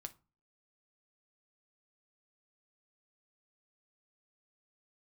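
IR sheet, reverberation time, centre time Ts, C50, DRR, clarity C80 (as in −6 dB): 0.30 s, 3 ms, 19.5 dB, 7.5 dB, 26.0 dB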